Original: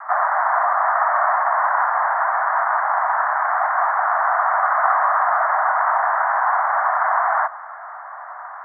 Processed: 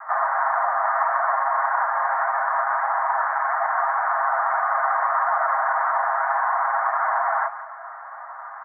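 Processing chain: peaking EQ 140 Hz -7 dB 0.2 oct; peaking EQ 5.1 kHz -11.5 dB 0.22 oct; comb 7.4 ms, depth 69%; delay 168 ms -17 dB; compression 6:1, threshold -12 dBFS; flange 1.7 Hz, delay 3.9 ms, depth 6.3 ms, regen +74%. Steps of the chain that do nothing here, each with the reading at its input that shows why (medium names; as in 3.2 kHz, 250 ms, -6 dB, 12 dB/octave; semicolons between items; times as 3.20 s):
peaking EQ 140 Hz: input has nothing below 510 Hz; peaking EQ 5.1 kHz: input has nothing above 2.2 kHz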